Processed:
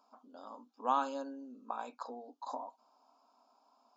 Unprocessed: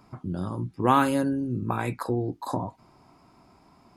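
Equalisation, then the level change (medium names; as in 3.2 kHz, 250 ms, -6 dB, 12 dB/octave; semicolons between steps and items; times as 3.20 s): brick-wall FIR band-pass 230–7400 Hz; static phaser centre 830 Hz, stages 4; -8.0 dB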